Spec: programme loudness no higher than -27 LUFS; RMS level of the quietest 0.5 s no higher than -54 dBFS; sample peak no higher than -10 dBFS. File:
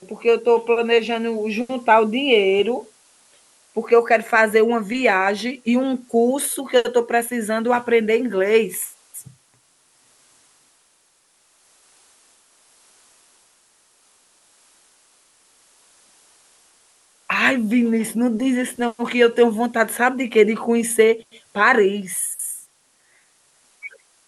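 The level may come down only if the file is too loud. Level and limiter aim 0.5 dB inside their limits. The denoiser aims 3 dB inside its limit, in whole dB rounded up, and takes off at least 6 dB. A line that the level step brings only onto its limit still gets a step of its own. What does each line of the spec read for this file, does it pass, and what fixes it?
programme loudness -19.0 LUFS: fail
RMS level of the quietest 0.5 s -61 dBFS: pass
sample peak -3.0 dBFS: fail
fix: trim -8.5 dB

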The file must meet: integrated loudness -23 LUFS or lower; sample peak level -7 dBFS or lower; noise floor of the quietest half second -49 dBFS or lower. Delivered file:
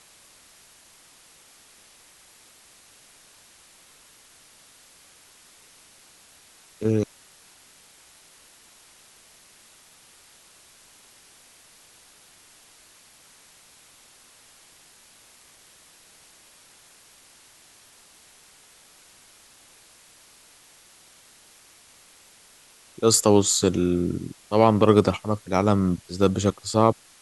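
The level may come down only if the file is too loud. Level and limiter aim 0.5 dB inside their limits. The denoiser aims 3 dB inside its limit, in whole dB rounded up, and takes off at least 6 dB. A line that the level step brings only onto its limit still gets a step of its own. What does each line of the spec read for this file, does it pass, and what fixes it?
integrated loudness -21.5 LUFS: fail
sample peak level -3.0 dBFS: fail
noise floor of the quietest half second -54 dBFS: pass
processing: trim -2 dB; peak limiter -7.5 dBFS

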